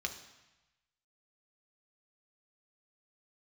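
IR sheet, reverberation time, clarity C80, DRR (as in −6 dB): 1.0 s, 12.0 dB, 3.0 dB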